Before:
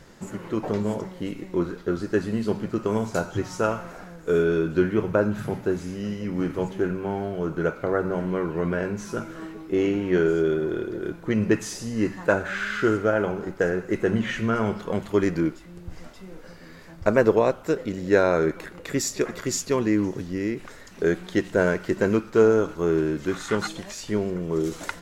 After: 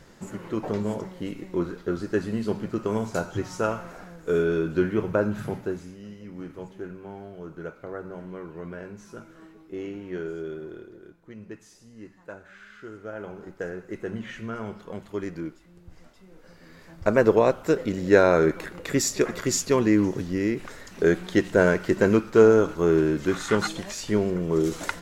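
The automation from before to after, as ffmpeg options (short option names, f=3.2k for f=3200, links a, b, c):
-af "volume=20dB,afade=t=out:st=5.48:d=0.49:silence=0.316228,afade=t=out:st=10.65:d=0.5:silence=0.398107,afade=t=in:st=12.91:d=0.53:silence=0.316228,afade=t=in:st=16.29:d=1.37:silence=0.251189"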